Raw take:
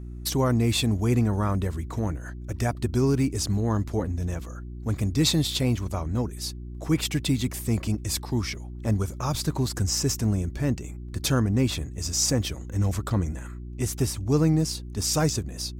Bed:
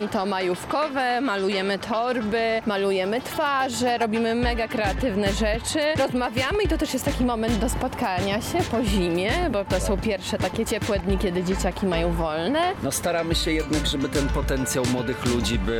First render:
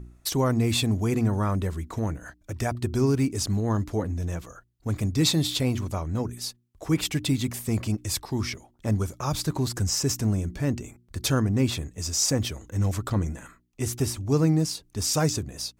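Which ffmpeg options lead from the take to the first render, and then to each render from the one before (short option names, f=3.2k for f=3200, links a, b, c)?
-af "bandreject=f=60:t=h:w=4,bandreject=f=120:t=h:w=4,bandreject=f=180:t=h:w=4,bandreject=f=240:t=h:w=4,bandreject=f=300:t=h:w=4,bandreject=f=360:t=h:w=4"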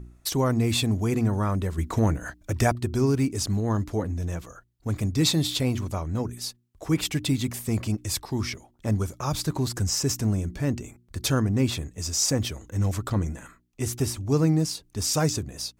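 -filter_complex "[0:a]asettb=1/sr,asplit=3[a][b][c];[a]atrim=end=1.784[d];[b]atrim=start=1.78:end=2.72,asetpts=PTS-STARTPTS,afade=t=in:d=0.004:c=qsin,afade=t=out:st=0.936:d=0.004:c=qsin,acontrast=57[e];[c]atrim=start=2.716[f];[d][e]acrossfade=d=0.004:c1=hsin:c2=qsin[g];[g][f]acrossfade=d=0.004:c1=qsin:c2=hsin"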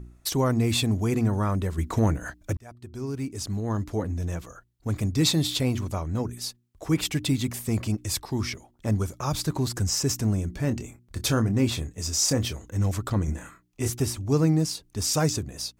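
-filter_complex "[0:a]asettb=1/sr,asplit=3[a][b][c];[a]atrim=end=10.624[d];[b]atrim=start=10.62:end=12.65,asetpts=PTS-STARTPTS,afade=t=in:d=0.004:c=qsin,afade=t=out:st=2.026:d=0.004:c=qsin,asplit=2[e][f];[f]adelay=26,volume=-10dB[g];[e][g]amix=inputs=2:normalize=0,atrim=end_sample=89523[h];[c]atrim=start=12.646[i];[d][h]acrossfade=d=0.004:c1=hsin:c2=qsin[j];[j][i]acrossfade=d=0.004:c1=qsin:c2=hsin,asettb=1/sr,asplit=3[k][l][m];[k]atrim=end=13.254[n];[l]atrim=start=13.25:end=13.9,asetpts=PTS-STARTPTS,afade=t=in:d=0.004:c=qsin,afade=t=out:st=0.646:d=0.004:c=qsin,asplit=2[o][p];[p]adelay=27,volume=-3dB[q];[o][q]amix=inputs=2:normalize=0,atrim=end_sample=28665[r];[m]atrim=start=13.896[s];[n][r]acrossfade=d=0.004:c1=hsin:c2=qsin[t];[t][s]acrossfade=d=0.004:c1=qsin:c2=hsin,asplit=2[u][v];[u]atrim=end=2.57,asetpts=PTS-STARTPTS,afade=t=out:st=2.566:d=0.004:c=hsin[w];[v]atrim=start=2.57,asetpts=PTS-STARTPTS,afade=t=in:d=1.56[x];[w][x]concat=n=2:v=0:a=1"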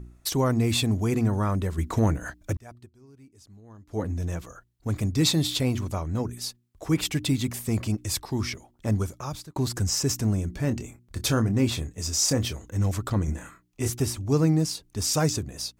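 -filter_complex "[0:a]asplit=4[a][b][c][d];[a]atrim=end=2.9,asetpts=PTS-STARTPTS,afade=t=out:st=2.78:d=0.12:silence=0.0944061[e];[b]atrim=start=2.9:end=3.88,asetpts=PTS-STARTPTS,volume=-20.5dB[f];[c]atrim=start=3.88:end=9.56,asetpts=PTS-STARTPTS,afade=t=in:d=0.12:silence=0.0944061,afade=t=out:st=5.13:d=0.55[g];[d]atrim=start=9.56,asetpts=PTS-STARTPTS,afade=t=in:d=0.004:c=hsin[h];[e][f][g][h]concat=n=4:v=0:a=1"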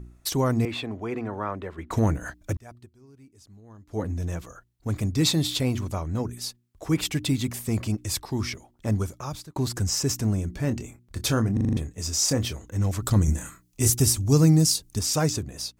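-filter_complex "[0:a]asettb=1/sr,asplit=3[a][b][c];[a]atrim=end=0.654[d];[b]atrim=start=0.65:end=1.91,asetpts=PTS-STARTPTS,afade=t=in:d=0.004:c=qsin,afade=t=out:st=1.256:d=0.004:c=qsin,acrossover=split=310 3200:gain=0.2 1 0.0794[e][f][g];[e][f][g]amix=inputs=3:normalize=0[h];[c]atrim=start=1.906[i];[d][h]acrossfade=d=0.004:c1=hsin:c2=qsin[j];[j][i]acrossfade=d=0.004:c1=qsin:c2=hsin,asettb=1/sr,asplit=3[k][l][m];[k]atrim=end=13.024[n];[l]atrim=start=13.02:end=14.99,asetpts=PTS-STARTPTS,afade=t=in:d=0.004:c=qsin,afade=t=out:st=1.966:d=0.004:c=qsin,bass=f=250:g=6,treble=f=4k:g=12[o];[m]atrim=start=14.986[p];[n][o]acrossfade=d=0.004:c1=hsin:c2=qsin[q];[q][p]acrossfade=d=0.004:c1=qsin:c2=hsin,asplit=7[r][s][t][u][v][w][x];[r]atrim=end=11.572[y];[s]atrim=start=11.528:end=11.572[z];[t]atrim=start=11.528:end=11.572[aa];[u]atrim=start=11.528:end=11.572[ab];[v]atrim=start=11.528:end=11.572[ac];[w]atrim=start=11.528:end=11.572[ad];[x]atrim=start=11.768[ae];[y][z]acrossfade=d=0.004:c1=hsin:c2=hsin[af];[af][aa]acrossfade=d=0.004:c1=hsin:c2=hsin[ag];[ag][ab]acrossfade=d=0.004:c1=hsin:c2=hsin[ah];[ah][ac]acrossfade=d=0.004:c1=hsin:c2=hsin[ai];[ai][ad]acrossfade=d=0.004:c1=hsin:c2=hsin[aj];[aj][ae]acrossfade=d=0.004:c1=hsin:c2=hsin"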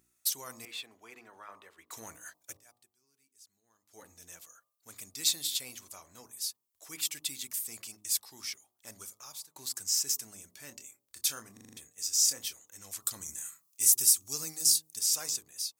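-af "aderivative,bandreject=f=52.12:t=h:w=4,bandreject=f=104.24:t=h:w=4,bandreject=f=156.36:t=h:w=4,bandreject=f=208.48:t=h:w=4,bandreject=f=260.6:t=h:w=4,bandreject=f=312.72:t=h:w=4,bandreject=f=364.84:t=h:w=4,bandreject=f=416.96:t=h:w=4,bandreject=f=469.08:t=h:w=4,bandreject=f=521.2:t=h:w=4,bandreject=f=573.32:t=h:w=4,bandreject=f=625.44:t=h:w=4,bandreject=f=677.56:t=h:w=4,bandreject=f=729.68:t=h:w=4,bandreject=f=781.8:t=h:w=4,bandreject=f=833.92:t=h:w=4,bandreject=f=886.04:t=h:w=4,bandreject=f=938.16:t=h:w=4,bandreject=f=990.28:t=h:w=4,bandreject=f=1.0424k:t=h:w=4,bandreject=f=1.09452k:t=h:w=4,bandreject=f=1.14664k:t=h:w=4,bandreject=f=1.19876k:t=h:w=4,bandreject=f=1.25088k:t=h:w=4"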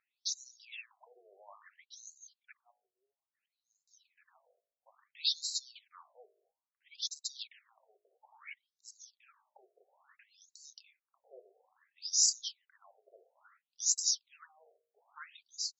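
-af "acrusher=bits=7:mode=log:mix=0:aa=0.000001,afftfilt=real='re*between(b*sr/1024,500*pow(5500/500,0.5+0.5*sin(2*PI*0.59*pts/sr))/1.41,500*pow(5500/500,0.5+0.5*sin(2*PI*0.59*pts/sr))*1.41)':imag='im*between(b*sr/1024,500*pow(5500/500,0.5+0.5*sin(2*PI*0.59*pts/sr))/1.41,500*pow(5500/500,0.5+0.5*sin(2*PI*0.59*pts/sr))*1.41)':win_size=1024:overlap=0.75"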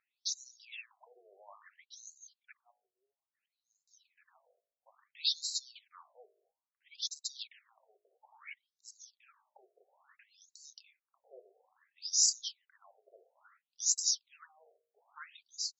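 -af anull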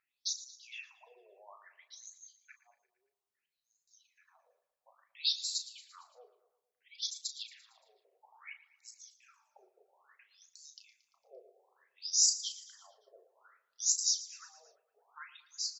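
-filter_complex "[0:a]asplit=2[a][b];[b]adelay=35,volume=-9dB[c];[a][c]amix=inputs=2:normalize=0,aecho=1:1:114|228|342|456|570:0.15|0.0823|0.0453|0.0249|0.0137"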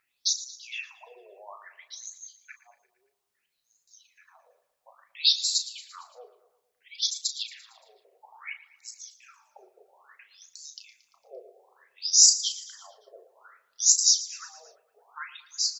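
-af "volume=10dB"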